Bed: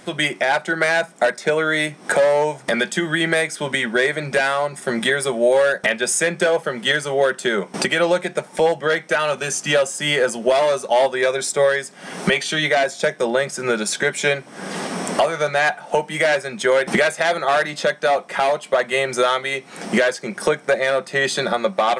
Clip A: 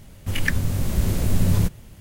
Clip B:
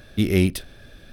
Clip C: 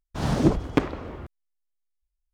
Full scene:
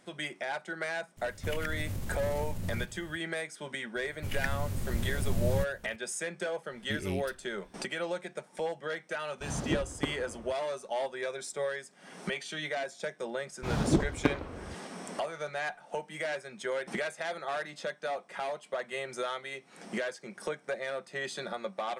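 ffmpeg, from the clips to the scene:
-filter_complex "[1:a]asplit=2[a][b];[3:a]asplit=2[c][d];[0:a]volume=-17dB[e];[a]acompressor=threshold=-25dB:ratio=6:attack=3.2:release=140:knee=1:detection=peak,atrim=end=2,asetpts=PTS-STARTPTS,volume=-6.5dB,afade=t=in:d=0.004:c=hsin,afade=t=out:st=1.996:d=0.004:c=hsin,adelay=1170[f];[b]atrim=end=2,asetpts=PTS-STARTPTS,volume=-11dB,afade=t=in:d=0.004:c=hsin,afade=t=out:st=1.996:d=0.004:c=hsin,adelay=3960[g];[2:a]atrim=end=1.12,asetpts=PTS-STARTPTS,volume=-16.5dB,afade=t=in:d=0.004:c=hsin,afade=t=out:st=1.116:d=0.004:c=hsin,adelay=6720[h];[c]atrim=end=2.33,asetpts=PTS-STARTPTS,volume=-11.5dB,afade=t=in:d=0.004:c=hsin,afade=t=out:st=2.326:d=0.004:c=hsin,adelay=9260[i];[d]atrim=end=2.33,asetpts=PTS-STARTPTS,volume=-6dB,afade=t=in:d=0.004:c=hsin,afade=t=out:st=2.326:d=0.004:c=hsin,adelay=594468S[j];[e][f][g][h][i][j]amix=inputs=6:normalize=0"

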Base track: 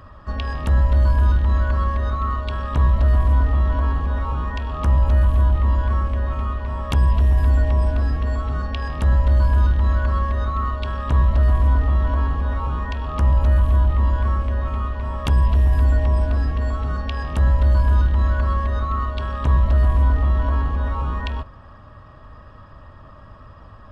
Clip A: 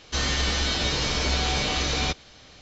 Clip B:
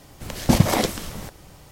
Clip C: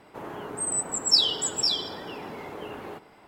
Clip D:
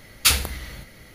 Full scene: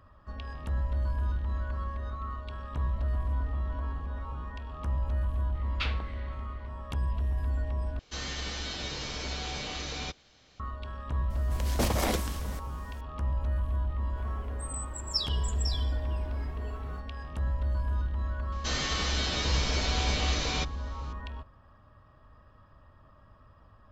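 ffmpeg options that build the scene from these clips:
-filter_complex "[1:a]asplit=2[a][b];[0:a]volume=-14dB[c];[4:a]lowpass=f=3.4k:w=0.5412,lowpass=f=3.4k:w=1.3066[d];[2:a]aeval=exprs='0.211*(abs(mod(val(0)/0.211+3,4)-2)-1)':c=same[e];[3:a]asplit=2[f][g];[g]adelay=2.7,afreqshift=0.8[h];[f][h]amix=inputs=2:normalize=1[i];[c]asplit=2[j][k];[j]atrim=end=7.994[l];[a]atrim=end=2.61,asetpts=PTS-STARTPTS,volume=-11dB[m];[k]atrim=start=10.596[n];[d]atrim=end=1.14,asetpts=PTS-STARTPTS,volume=-11.5dB,afade=t=in:d=0.004:c=hsin,afade=t=out:st=1.136:d=0.004:c=hsin,adelay=5550[o];[e]atrim=end=1.71,asetpts=PTS-STARTPTS,volume=-7dB,afade=t=in:d=0.004:c=hsin,afade=t=out:st=1.706:d=0.004:c=hsin,adelay=498330S[p];[i]atrim=end=3.27,asetpts=PTS-STARTPTS,volume=-9dB,afade=t=in:d=0.004:c=hsin,afade=t=out:st=3.266:d=0.004:c=hsin,adelay=14020[q];[b]atrim=end=2.61,asetpts=PTS-STARTPTS,volume=-5.5dB,afade=t=in:d=0.004:c=hsin,afade=t=out:st=2.606:d=0.004:c=hsin,adelay=18520[r];[l][m]acrossfade=d=0.004:c1=hsin:c2=hsin[s];[s][n]acrossfade=d=0.004:c1=hsin:c2=hsin[t];[t][o][p][q][r]amix=inputs=5:normalize=0"

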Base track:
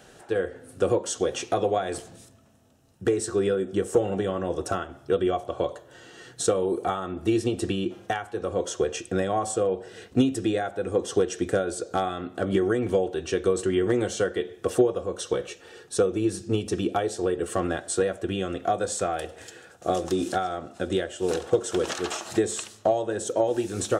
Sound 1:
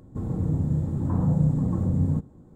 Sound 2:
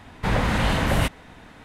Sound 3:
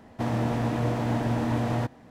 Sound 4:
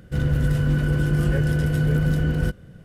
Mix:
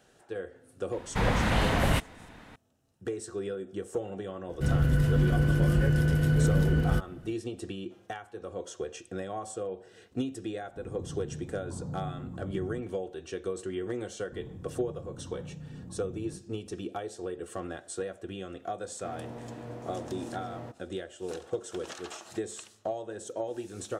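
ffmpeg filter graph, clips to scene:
-filter_complex "[1:a]asplit=2[a][b];[0:a]volume=-11dB[c];[b]acompressor=threshold=-27dB:ratio=6:attack=3.2:release=140:knee=1:detection=peak[d];[3:a]equalizer=f=450:w=1.4:g=7[e];[2:a]atrim=end=1.64,asetpts=PTS-STARTPTS,volume=-4dB,afade=t=in:d=0.004:c=hsin,afade=t=out:st=1.636:d=0.004:c=hsin,adelay=920[f];[4:a]atrim=end=2.84,asetpts=PTS-STARTPTS,volume=-3.5dB,afade=t=in:d=0.004:c=hsin,afade=t=out:st=2.836:d=0.004:c=hsin,adelay=198009S[g];[a]atrim=end=2.55,asetpts=PTS-STARTPTS,volume=-16dB,afade=t=in:d=0.004:c=hsin,afade=t=out:st=2.546:d=0.004:c=hsin,adelay=10610[h];[d]atrim=end=2.55,asetpts=PTS-STARTPTS,volume=-13dB,afade=t=in:d=0.004:c=hsin,afade=t=out:st=2.546:d=0.004:c=hsin,adelay=14170[i];[e]atrim=end=2.1,asetpts=PTS-STARTPTS,volume=-17.5dB,afade=t=in:d=0.004:c=hsin,afade=t=out:st=2.096:d=0.004:c=hsin,adelay=18850[j];[c][f][g][h][i][j]amix=inputs=6:normalize=0"

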